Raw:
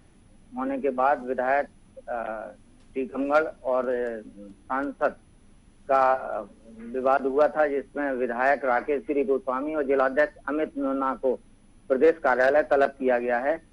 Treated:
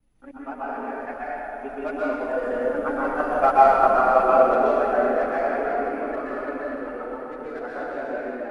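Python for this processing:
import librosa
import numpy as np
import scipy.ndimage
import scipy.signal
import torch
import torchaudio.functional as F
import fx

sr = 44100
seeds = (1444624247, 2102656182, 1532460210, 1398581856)

p1 = fx.block_reorder(x, sr, ms=126.0, group=3)
p2 = fx.doppler_pass(p1, sr, speed_mps=10, closest_m=9.1, pass_at_s=5.67)
p3 = fx.chorus_voices(p2, sr, voices=6, hz=0.31, base_ms=20, depth_ms=4.3, mix_pct=65)
p4 = fx.stretch_grains(p3, sr, factor=0.62, grain_ms=81.0)
p5 = p4 + fx.echo_alternate(p4, sr, ms=253, hz=1100.0, feedback_pct=72, wet_db=-8.5, dry=0)
p6 = fx.rev_plate(p5, sr, seeds[0], rt60_s=2.1, hf_ratio=0.85, predelay_ms=110, drr_db=-7.5)
y = F.gain(torch.from_numpy(p6), 5.0).numpy()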